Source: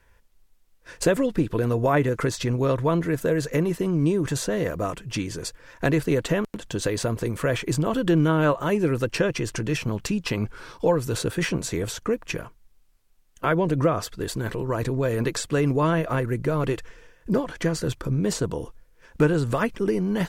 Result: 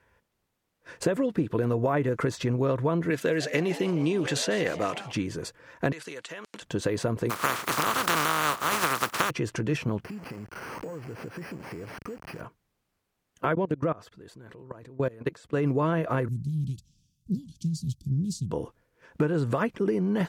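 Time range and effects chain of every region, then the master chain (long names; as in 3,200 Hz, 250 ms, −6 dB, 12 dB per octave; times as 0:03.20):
0:03.10–0:05.12: meter weighting curve D + echo with shifted repeats 152 ms, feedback 64%, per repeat +120 Hz, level −16.5 dB
0:05.92–0:06.62: meter weighting curve ITU-R 468 + downward compressor 10 to 1, threshold −33 dBFS
0:07.29–0:09.29: compressing power law on the bin magnitudes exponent 0.18 + high-pass filter 55 Hz + parametric band 1,200 Hz +11 dB 0.7 octaves
0:10.04–0:12.41: linear delta modulator 16 kbit/s, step −29.5 dBFS + bad sample-rate conversion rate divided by 6×, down filtered, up hold + downward compressor 8 to 1, threshold −34 dBFS
0:13.55–0:15.66: output level in coarse steps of 23 dB + high-shelf EQ 10,000 Hz −4 dB
0:16.28–0:18.51: inverse Chebyshev band-stop filter 430–2,000 Hz, stop band 50 dB + highs frequency-modulated by the lows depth 0.25 ms
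whole clip: high-pass filter 100 Hz; high-shelf EQ 3,200 Hz −9 dB; downward compressor, threshold −21 dBFS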